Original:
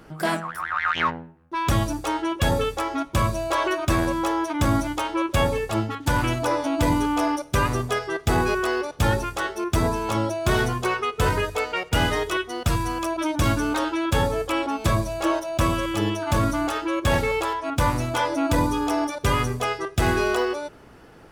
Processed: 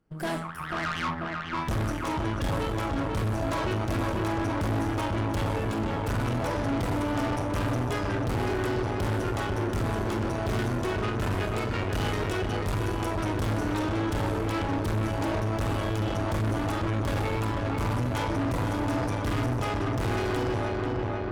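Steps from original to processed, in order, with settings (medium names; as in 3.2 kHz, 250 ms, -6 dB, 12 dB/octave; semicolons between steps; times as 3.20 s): gate -39 dBFS, range -22 dB; bass shelf 300 Hz +10 dB; Schroeder reverb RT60 0.32 s, combs from 29 ms, DRR 7 dB; overload inside the chain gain 15.5 dB; filtered feedback delay 491 ms, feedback 78%, low-pass 3 kHz, level -4 dB; valve stage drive 21 dB, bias 0.8; trim -3.5 dB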